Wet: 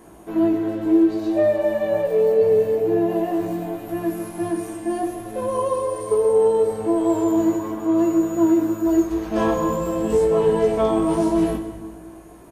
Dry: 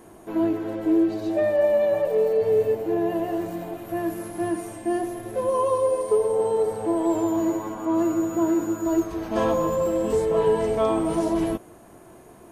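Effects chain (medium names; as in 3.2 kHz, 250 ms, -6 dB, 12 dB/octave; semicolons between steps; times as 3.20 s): doubling 18 ms -5 dB; reverberation RT60 1.8 s, pre-delay 8 ms, DRR 6.5 dB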